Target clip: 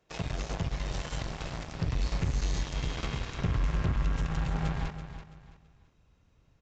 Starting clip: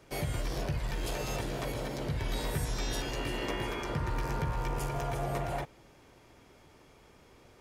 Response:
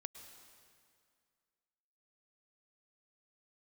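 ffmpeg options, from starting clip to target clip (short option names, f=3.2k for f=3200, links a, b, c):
-af "asetrate=50715,aresample=44100,acontrast=68,aeval=exprs='0.224*(cos(1*acos(clip(val(0)/0.224,-1,1)))-cos(1*PI/2))+0.0447*(cos(3*acos(clip(val(0)/0.224,-1,1)))-cos(3*PI/2))+0.0158*(cos(7*acos(clip(val(0)/0.224,-1,1)))-cos(7*PI/2))':c=same,asubboost=boost=5.5:cutoff=180,aresample=16000,asoftclip=type=tanh:threshold=-22dB,aresample=44100,aecho=1:1:332|664|996:0.299|0.0896|0.0269"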